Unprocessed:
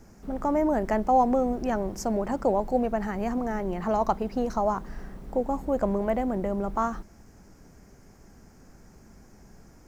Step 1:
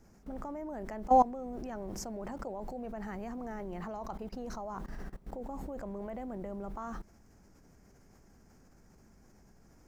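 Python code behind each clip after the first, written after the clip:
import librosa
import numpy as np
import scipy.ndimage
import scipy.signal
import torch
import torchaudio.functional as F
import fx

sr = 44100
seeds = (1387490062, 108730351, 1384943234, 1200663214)

y = fx.level_steps(x, sr, step_db=20)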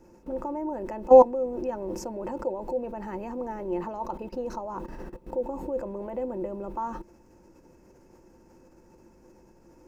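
y = fx.small_body(x, sr, hz=(350.0, 510.0, 900.0, 2600.0), ring_ms=60, db=17)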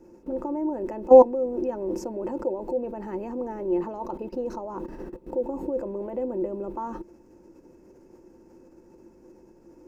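y = fx.peak_eq(x, sr, hz=340.0, db=9.0, octaves=1.3)
y = y * librosa.db_to_amplitude(-3.0)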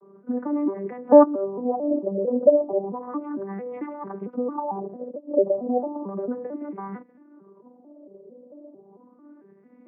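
y = fx.vocoder_arp(x, sr, chord='major triad', root=55, every_ms=224)
y = fx.filter_lfo_lowpass(y, sr, shape='sine', hz=0.33, low_hz=540.0, high_hz=2100.0, q=7.1)
y = y * librosa.db_to_amplitude(-1.0)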